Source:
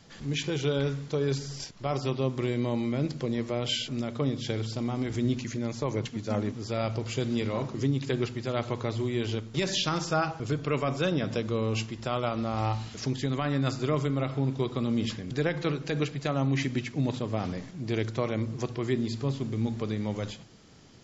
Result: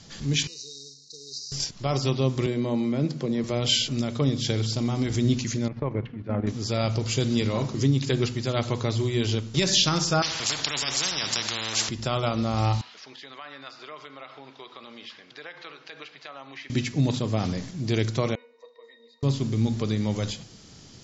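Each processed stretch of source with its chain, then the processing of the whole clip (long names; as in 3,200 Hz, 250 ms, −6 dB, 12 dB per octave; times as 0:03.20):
0:00.47–0:01.52: variable-slope delta modulation 32 kbit/s + linear-phase brick-wall band-stop 520–3,700 Hz + first difference
0:02.46–0:03.44: high-pass filter 140 Hz 24 dB per octave + high-shelf EQ 2,400 Hz −9.5 dB
0:05.68–0:06.47: low-pass filter 2,200 Hz 24 dB per octave + output level in coarse steps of 10 dB
0:10.22–0:11.89: high-pass filter 110 Hz + bass and treble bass −8 dB, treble −11 dB + every bin compressed towards the loudest bin 10 to 1
0:12.81–0:16.70: high-pass filter 940 Hz + downward compressor 2 to 1, threshold −42 dBFS + high-frequency loss of the air 280 metres
0:18.35–0:19.23: Butterworth high-pass 480 Hz + resonances in every octave A#, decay 0.15 s
whole clip: low-pass filter 5,600 Hz 12 dB per octave; bass and treble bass +4 dB, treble +15 dB; hum removal 245.7 Hz, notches 12; level +2.5 dB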